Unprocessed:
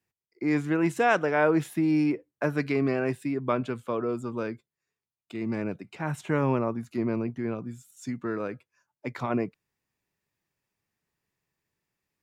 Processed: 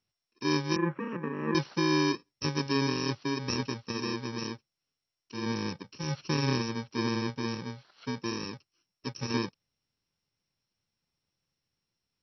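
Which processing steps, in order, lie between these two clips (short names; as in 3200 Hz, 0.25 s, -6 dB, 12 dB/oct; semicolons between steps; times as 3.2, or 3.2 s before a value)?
FFT order left unsorted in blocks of 64 samples; 0.76–1.55 elliptic band-pass 150–1900 Hz, stop band 40 dB; MP2 48 kbps 22050 Hz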